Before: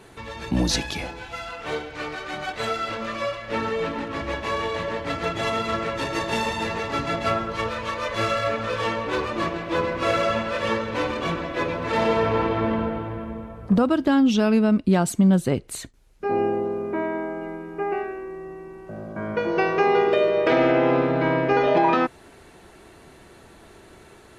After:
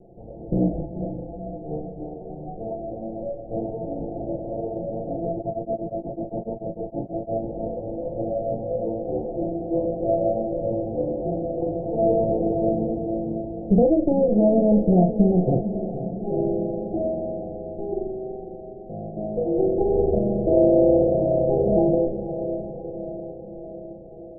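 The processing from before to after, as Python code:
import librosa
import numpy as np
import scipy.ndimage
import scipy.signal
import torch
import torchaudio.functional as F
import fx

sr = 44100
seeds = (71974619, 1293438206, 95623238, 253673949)

y = fx.lower_of_two(x, sr, delay_ms=5.9)
y = scipy.signal.sosfilt(scipy.signal.butter(16, 750.0, 'lowpass', fs=sr, output='sos'), y)
y = fx.doubler(y, sr, ms=39.0, db=-5.0)
y = fx.echo_diffused(y, sr, ms=496, feedback_pct=62, wet_db=-10)
y = fx.tremolo_abs(y, sr, hz=fx.line((5.34, 9.3), (7.42, 5.2)), at=(5.34, 7.42), fade=0.02)
y = F.gain(torch.from_numpy(y), 2.0).numpy()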